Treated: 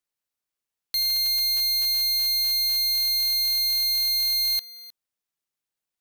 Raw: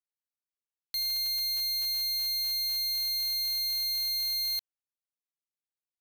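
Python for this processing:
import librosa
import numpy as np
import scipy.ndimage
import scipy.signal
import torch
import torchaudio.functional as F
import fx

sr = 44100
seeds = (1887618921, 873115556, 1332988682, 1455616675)

y = x + 10.0 ** (-19.5 / 20.0) * np.pad(x, (int(311 * sr / 1000.0), 0))[:len(x)]
y = y * 10.0 ** (7.0 / 20.0)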